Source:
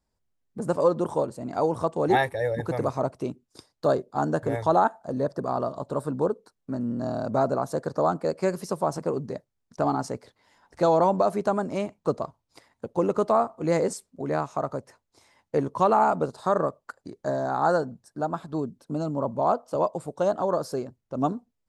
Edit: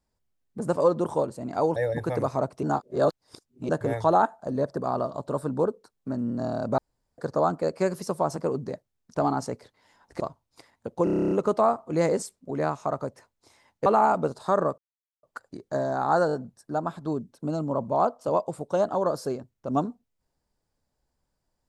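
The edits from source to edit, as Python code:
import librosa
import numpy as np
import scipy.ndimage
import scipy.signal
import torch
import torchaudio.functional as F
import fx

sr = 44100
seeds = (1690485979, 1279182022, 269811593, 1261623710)

y = fx.edit(x, sr, fx.cut(start_s=1.76, length_s=0.62),
    fx.reverse_span(start_s=3.25, length_s=1.06),
    fx.room_tone_fill(start_s=7.4, length_s=0.4),
    fx.cut(start_s=10.82, length_s=1.36),
    fx.stutter(start_s=13.02, slice_s=0.03, count=10),
    fx.cut(start_s=15.57, length_s=0.27),
    fx.insert_silence(at_s=16.76, length_s=0.45),
    fx.stutter(start_s=17.8, slice_s=0.02, count=4), tone=tone)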